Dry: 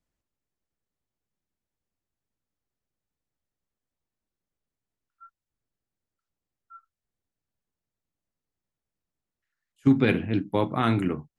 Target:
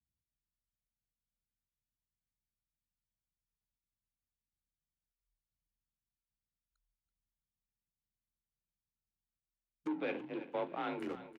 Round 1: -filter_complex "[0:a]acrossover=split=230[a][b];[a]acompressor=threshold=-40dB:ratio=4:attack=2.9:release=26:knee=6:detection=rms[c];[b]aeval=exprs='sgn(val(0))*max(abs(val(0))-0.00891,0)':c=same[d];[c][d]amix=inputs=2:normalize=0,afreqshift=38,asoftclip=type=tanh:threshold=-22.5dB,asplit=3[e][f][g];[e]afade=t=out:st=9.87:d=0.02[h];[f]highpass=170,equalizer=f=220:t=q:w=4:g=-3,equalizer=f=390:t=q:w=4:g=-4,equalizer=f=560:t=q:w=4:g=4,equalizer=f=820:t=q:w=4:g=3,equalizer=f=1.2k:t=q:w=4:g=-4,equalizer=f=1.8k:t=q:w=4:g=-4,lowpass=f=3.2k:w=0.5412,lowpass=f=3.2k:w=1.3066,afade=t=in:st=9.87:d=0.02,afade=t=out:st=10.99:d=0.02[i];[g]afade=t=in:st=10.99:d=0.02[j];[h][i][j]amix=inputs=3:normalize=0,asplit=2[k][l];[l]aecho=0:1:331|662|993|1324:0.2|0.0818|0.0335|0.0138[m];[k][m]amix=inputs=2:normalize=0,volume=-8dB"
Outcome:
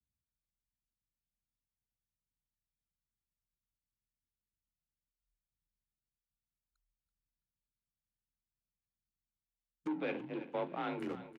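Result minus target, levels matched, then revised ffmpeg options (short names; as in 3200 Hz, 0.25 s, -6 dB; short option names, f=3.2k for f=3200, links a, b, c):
compressor: peak gain reduction -7 dB
-filter_complex "[0:a]acrossover=split=230[a][b];[a]acompressor=threshold=-49.5dB:ratio=4:attack=2.9:release=26:knee=6:detection=rms[c];[b]aeval=exprs='sgn(val(0))*max(abs(val(0))-0.00891,0)':c=same[d];[c][d]amix=inputs=2:normalize=0,afreqshift=38,asoftclip=type=tanh:threshold=-22.5dB,asplit=3[e][f][g];[e]afade=t=out:st=9.87:d=0.02[h];[f]highpass=170,equalizer=f=220:t=q:w=4:g=-3,equalizer=f=390:t=q:w=4:g=-4,equalizer=f=560:t=q:w=4:g=4,equalizer=f=820:t=q:w=4:g=3,equalizer=f=1.2k:t=q:w=4:g=-4,equalizer=f=1.8k:t=q:w=4:g=-4,lowpass=f=3.2k:w=0.5412,lowpass=f=3.2k:w=1.3066,afade=t=in:st=9.87:d=0.02,afade=t=out:st=10.99:d=0.02[i];[g]afade=t=in:st=10.99:d=0.02[j];[h][i][j]amix=inputs=3:normalize=0,asplit=2[k][l];[l]aecho=0:1:331|662|993|1324:0.2|0.0818|0.0335|0.0138[m];[k][m]amix=inputs=2:normalize=0,volume=-8dB"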